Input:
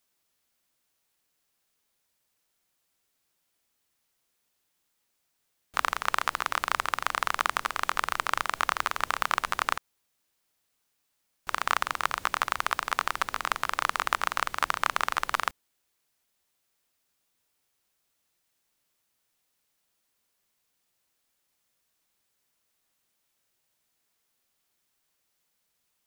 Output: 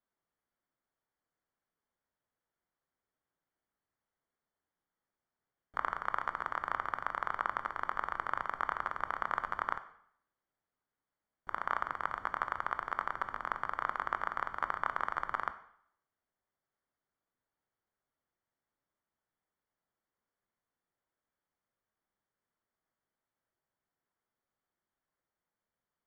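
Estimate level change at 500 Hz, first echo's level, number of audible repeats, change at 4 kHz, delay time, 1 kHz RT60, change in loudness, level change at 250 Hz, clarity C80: −6.0 dB, no echo audible, no echo audible, −21.0 dB, no echo audible, 0.70 s, −7.5 dB, −6.0 dB, 16.5 dB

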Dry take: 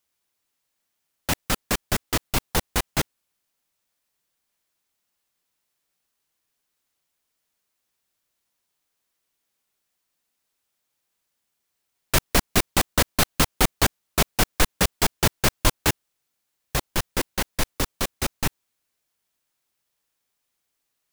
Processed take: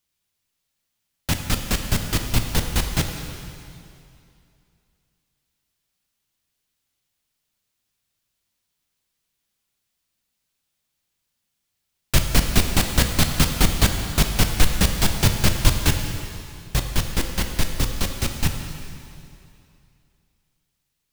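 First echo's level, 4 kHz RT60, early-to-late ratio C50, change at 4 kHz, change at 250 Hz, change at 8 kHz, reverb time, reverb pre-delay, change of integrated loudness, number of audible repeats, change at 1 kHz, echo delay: no echo audible, 2.4 s, 5.5 dB, +2.0 dB, +3.5 dB, +0.5 dB, 2.6 s, 5 ms, +2.0 dB, no echo audible, −2.5 dB, no echo audible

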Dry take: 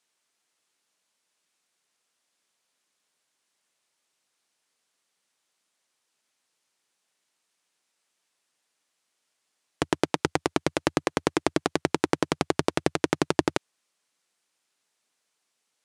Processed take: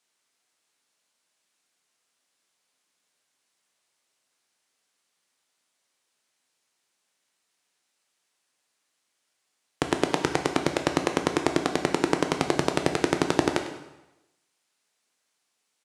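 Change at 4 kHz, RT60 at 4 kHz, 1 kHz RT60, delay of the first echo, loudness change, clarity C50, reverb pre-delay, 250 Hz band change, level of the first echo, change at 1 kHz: +1.5 dB, 0.90 s, 1.0 s, 100 ms, +1.0 dB, 7.5 dB, 6 ms, +1.0 dB, −15.0 dB, +1.5 dB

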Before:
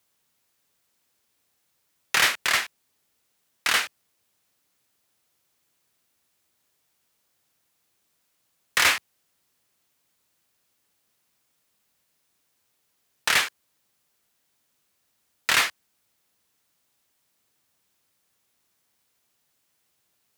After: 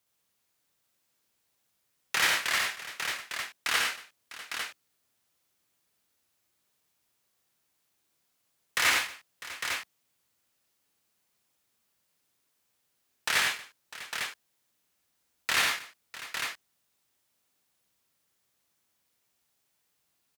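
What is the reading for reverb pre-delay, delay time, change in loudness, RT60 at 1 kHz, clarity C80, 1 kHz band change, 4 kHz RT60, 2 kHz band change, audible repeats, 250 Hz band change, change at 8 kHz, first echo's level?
no reverb audible, 64 ms, −6.5 dB, no reverb audible, no reverb audible, −3.5 dB, no reverb audible, −3.5 dB, 5, −3.5 dB, −3.5 dB, −4.0 dB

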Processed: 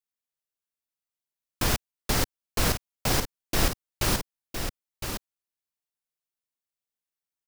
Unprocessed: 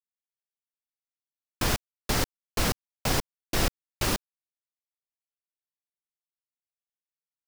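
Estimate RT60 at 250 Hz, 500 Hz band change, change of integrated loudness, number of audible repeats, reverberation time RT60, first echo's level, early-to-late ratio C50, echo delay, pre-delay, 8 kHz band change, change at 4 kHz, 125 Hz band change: no reverb audible, +1.0 dB, +0.5 dB, 1, no reverb audible, −7.5 dB, no reverb audible, 1,011 ms, no reverb audible, +2.5 dB, +1.5 dB, +2.0 dB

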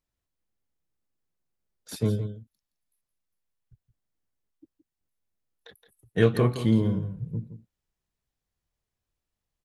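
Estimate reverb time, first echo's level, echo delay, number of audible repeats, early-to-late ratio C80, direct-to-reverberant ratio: no reverb audible, −11.5 dB, 169 ms, 1, no reverb audible, no reverb audible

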